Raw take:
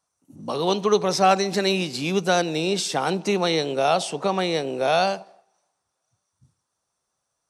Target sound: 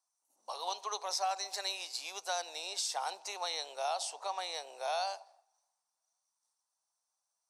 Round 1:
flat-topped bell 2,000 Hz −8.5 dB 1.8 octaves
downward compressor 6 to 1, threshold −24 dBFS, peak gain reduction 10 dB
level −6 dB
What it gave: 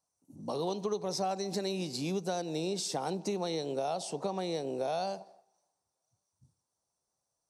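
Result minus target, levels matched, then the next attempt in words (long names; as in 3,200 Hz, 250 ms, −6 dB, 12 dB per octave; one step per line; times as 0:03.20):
1,000 Hz band −3.0 dB
high-pass filter 800 Hz 24 dB per octave
flat-topped bell 2,000 Hz −8.5 dB 1.8 octaves
downward compressor 6 to 1, threshold −24 dBFS, peak gain reduction 6 dB
level −6 dB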